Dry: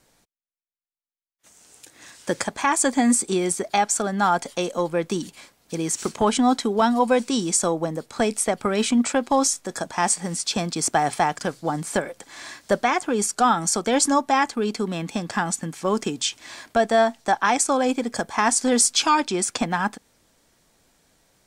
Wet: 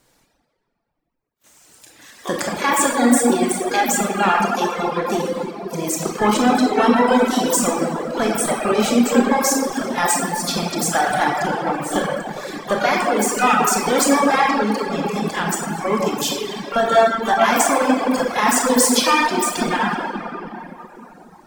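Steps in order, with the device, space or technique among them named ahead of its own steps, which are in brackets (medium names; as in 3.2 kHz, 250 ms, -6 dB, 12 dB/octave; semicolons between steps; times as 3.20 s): 12.62–14.04 s: hum notches 60/120/180/240/300 Hz; shimmer-style reverb (harmony voices +12 st -8 dB; reverberation RT60 3.9 s, pre-delay 23 ms, DRR -5.5 dB); reverb removal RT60 1.4 s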